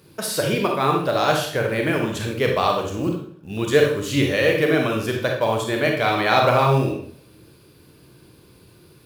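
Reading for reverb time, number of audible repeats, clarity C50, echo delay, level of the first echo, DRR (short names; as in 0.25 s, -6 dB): 0.60 s, none, 3.5 dB, none, none, 1.0 dB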